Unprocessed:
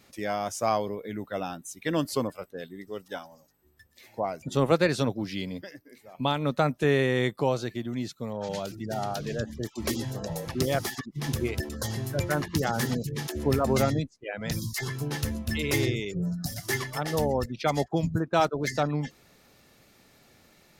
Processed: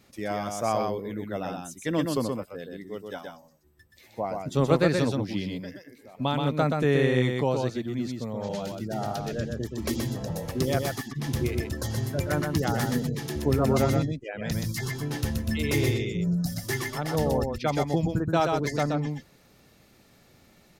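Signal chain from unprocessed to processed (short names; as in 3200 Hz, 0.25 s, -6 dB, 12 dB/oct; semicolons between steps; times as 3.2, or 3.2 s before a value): low shelf 420 Hz +4.5 dB; on a send: echo 0.126 s -4 dB; on the sum: gain -2.5 dB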